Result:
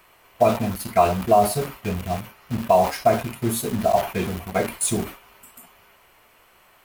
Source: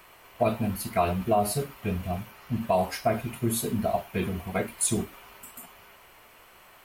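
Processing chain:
dynamic equaliser 750 Hz, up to +6 dB, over −35 dBFS, Q 0.81
in parallel at −4 dB: bit reduction 5 bits
on the sum: level that may fall only so fast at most 140 dB per second
level −2 dB

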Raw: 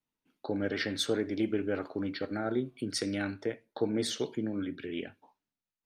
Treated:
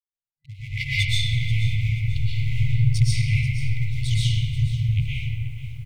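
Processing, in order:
adaptive Wiener filter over 25 samples
parametric band 9,400 Hz +12 dB 2.7 octaves
mains-hum notches 50/100 Hz
noise gate with hold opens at −50 dBFS
drawn EQ curve 410 Hz 0 dB, 2,000 Hz −6 dB, 4,800 Hz −26 dB
on a send: echo with shifted repeats 96 ms, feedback 56%, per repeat −66 Hz, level −14 dB
on the sum: automatic gain control gain up to 13 dB
in parallel at −7.5 dB: dead-zone distortion −34 dBFS
on the sum: brick-wall band-stop 140–2,000 Hz
comb and all-pass reverb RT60 2.5 s, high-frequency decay 0.35×, pre-delay 90 ms, DRR −10 dB
feedback echo at a low word length 485 ms, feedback 35%, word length 8 bits, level −14 dB

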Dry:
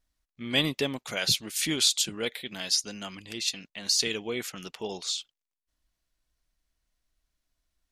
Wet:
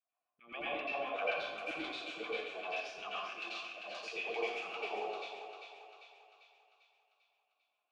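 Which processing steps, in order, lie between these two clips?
0:02.65–0:04.86: high-shelf EQ 2,400 Hz +12 dB
downward compressor 2 to 1, threshold −29 dBFS, peak gain reduction 10 dB
formant filter a
auto-filter band-pass saw down 7.6 Hz 280–2,600 Hz
feedback echo with a high-pass in the loop 396 ms, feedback 54%, high-pass 500 Hz, level −7 dB
dense smooth reverb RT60 0.94 s, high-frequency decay 0.8×, pre-delay 75 ms, DRR −9 dB
level +7.5 dB

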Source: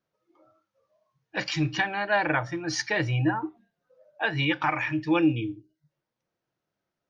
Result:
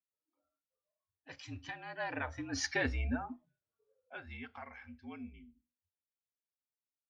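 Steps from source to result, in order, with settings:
source passing by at 0:02.73, 20 m/s, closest 5.4 metres
frequency shifter −51 Hz
level −6 dB

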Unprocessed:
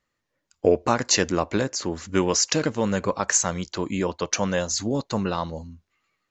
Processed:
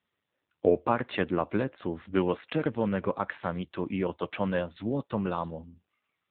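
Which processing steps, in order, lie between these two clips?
level −4 dB
AMR narrowband 7.4 kbit/s 8,000 Hz

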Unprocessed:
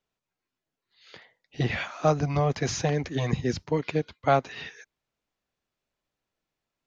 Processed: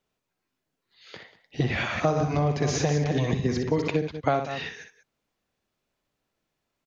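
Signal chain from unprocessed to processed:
0:01.72–0:03.88: delay that plays each chunk backwards 140 ms, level −5.5 dB
low-shelf EQ 420 Hz +5.5 dB
multi-tap delay 61/189 ms −8.5/−16.5 dB
downward compressor 6 to 1, threshold −23 dBFS, peak gain reduction 9.5 dB
low-shelf EQ 120 Hz −6 dB
level +3.5 dB

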